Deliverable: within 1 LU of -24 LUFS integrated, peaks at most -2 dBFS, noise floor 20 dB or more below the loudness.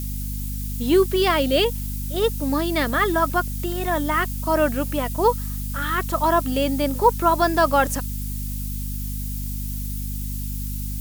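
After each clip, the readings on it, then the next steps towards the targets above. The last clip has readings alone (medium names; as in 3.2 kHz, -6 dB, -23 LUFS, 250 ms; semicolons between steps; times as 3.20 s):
hum 50 Hz; highest harmonic 250 Hz; hum level -26 dBFS; noise floor -28 dBFS; noise floor target -43 dBFS; loudness -22.5 LUFS; peak level -4.0 dBFS; loudness target -24.0 LUFS
-> hum notches 50/100/150/200/250 Hz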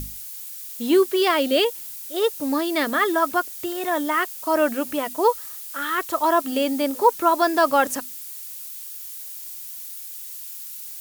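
hum not found; noise floor -36 dBFS; noise floor target -43 dBFS
-> noise reduction 7 dB, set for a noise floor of -36 dBFS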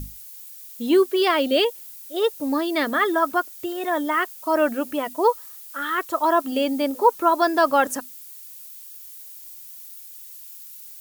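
noise floor -42 dBFS; loudness -22.0 LUFS; peak level -5.0 dBFS; loudness target -24.0 LUFS
-> trim -2 dB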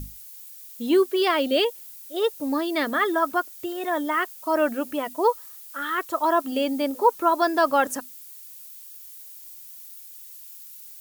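loudness -24.0 LUFS; peak level -7.0 dBFS; noise floor -44 dBFS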